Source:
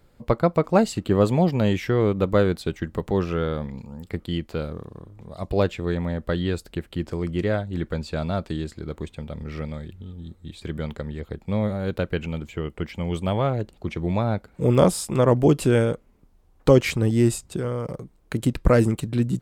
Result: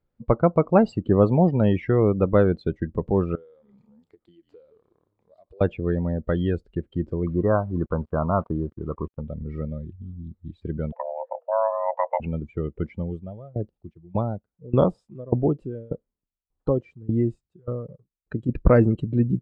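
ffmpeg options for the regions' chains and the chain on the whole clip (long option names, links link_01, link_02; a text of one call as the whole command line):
ffmpeg -i in.wav -filter_complex "[0:a]asettb=1/sr,asplit=3[link_01][link_02][link_03];[link_01]atrim=end=3.354[link_04];[link_02]atrim=start=3.35:end=5.61,asetpts=PTS-STARTPTS,afade=type=in:duration=0.004:curve=qsin,afade=type=out:start_time=2.256:duration=0.004:curve=qsin,bass=frequency=250:gain=-14,treble=frequency=4000:gain=6,asplit=4[link_05][link_06][link_07][link_08];[link_06]adelay=143,afreqshift=-53,volume=-18dB[link_09];[link_07]adelay=286,afreqshift=-106,volume=-26.6dB[link_10];[link_08]adelay=429,afreqshift=-159,volume=-35.3dB[link_11];[link_05][link_09][link_10][link_11]amix=inputs=4:normalize=0,atrim=end_sample=99666,acompressor=threshold=-41dB:ratio=10:attack=3.2:release=140:knee=1:detection=peak[link_12];[link_03]atrim=start=5.606[link_13];[link_04][link_12]acrossfade=duration=0.004:curve1=hsin:curve2=qsin[link_14];[link_14][link_13]acrossfade=duration=0.004:curve1=qsin:curve2=hsin,asettb=1/sr,asplit=3[link_15][link_16][link_17];[link_15]atrim=end=7.274[link_18];[link_16]atrim=start=7.27:end=9.21,asetpts=PTS-STARTPTS,afade=type=in:duration=0.004:curve=qsin,afade=type=out:start_time=1.936:duration=0.004:curve=qsin,lowpass=frequency=1100:width_type=q:width=5.6,acrusher=bits=6:mix=0:aa=0.5[link_19];[link_17]atrim=start=9.206[link_20];[link_18][link_19]acrossfade=duration=0.004:curve1=hsin:curve2=qsin[link_21];[link_21][link_20]acrossfade=duration=0.004:curve1=qsin:curve2=hsin,asettb=1/sr,asplit=3[link_22][link_23][link_24];[link_22]atrim=end=10.924[link_25];[link_23]atrim=start=10.92:end=12.2,asetpts=PTS-STARTPTS,afade=type=in:duration=0.004:curve=qsin,afade=type=out:start_time=1.276:duration=0.004:curve=qsin,lowpass=1500,afreqshift=450[link_26];[link_24]atrim=start=12.196[link_27];[link_25][link_26]acrossfade=duration=0.004:curve1=hsin:curve2=qsin[link_28];[link_28][link_27]acrossfade=duration=0.004:curve1=qsin:curve2=hsin,asettb=1/sr,asplit=3[link_29][link_30][link_31];[link_29]atrim=end=12.974[link_32];[link_30]atrim=start=12.97:end=18.49,asetpts=PTS-STARTPTS,afade=type=in:duration=0.004:curve=qsin,afade=type=out:start_time=5.516:duration=0.004:curve=qsin,bandreject=frequency=2200:width=11,aeval=exprs='val(0)*pow(10,-23*if(lt(mod(1.7*n/s,1),2*abs(1.7)/1000),1-mod(1.7*n/s,1)/(2*abs(1.7)/1000),(mod(1.7*n/s,1)-2*abs(1.7)/1000)/(1-2*abs(1.7)/1000))/20)':channel_layout=same[link_33];[link_31]atrim=start=18.486[link_34];[link_32][link_33]acrossfade=duration=0.004:curve1=hsin:curve2=qsin[link_35];[link_35][link_34]acrossfade=duration=0.004:curve1=qsin:curve2=hsin,lowpass=6100,afftdn=noise_reduction=21:noise_floor=-32,highshelf=frequency=2600:gain=-9.5,volume=1.5dB" out.wav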